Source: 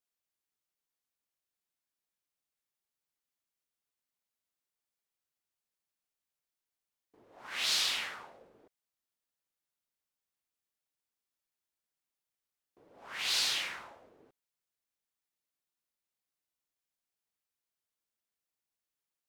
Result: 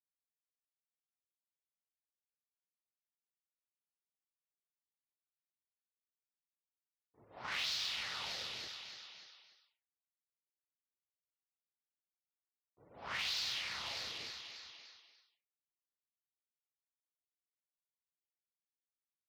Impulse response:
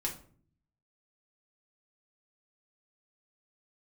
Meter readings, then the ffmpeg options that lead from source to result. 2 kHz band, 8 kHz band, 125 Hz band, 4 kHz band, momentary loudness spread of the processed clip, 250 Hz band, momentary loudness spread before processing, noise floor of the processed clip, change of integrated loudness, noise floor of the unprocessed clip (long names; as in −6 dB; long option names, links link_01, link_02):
−3.5 dB, −9.5 dB, can't be measured, −5.0 dB, 18 LU, −2.0 dB, 17 LU, below −85 dBFS, −8.0 dB, below −85 dBFS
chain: -af "highshelf=frequency=7300:width_type=q:width=1.5:gain=-12.5,aecho=1:1:294|588|882|1176|1470|1764:0.178|0.105|0.0619|0.0365|0.0215|0.0127,acompressor=threshold=-43dB:ratio=6,bandreject=frequency=1600:width=24,afftfilt=real='re*gte(hypot(re,im),0.000316)':imag='im*gte(hypot(re,im),0.000316)':win_size=1024:overlap=0.75,aeval=exprs='0.0282*(cos(1*acos(clip(val(0)/0.0282,-1,1)))-cos(1*PI/2))+0.00112*(cos(3*acos(clip(val(0)/0.0282,-1,1)))-cos(3*PI/2))+0.00398*(cos(5*acos(clip(val(0)/0.0282,-1,1)))-cos(5*PI/2))+0.00355*(cos(7*acos(clip(val(0)/0.0282,-1,1)))-cos(7*PI/2))':channel_layout=same,acontrast=74,agate=range=-33dB:threshold=-54dB:ratio=3:detection=peak,highpass=77,asubboost=boost=4.5:cutoff=130,asoftclip=type=tanh:threshold=-27.5dB"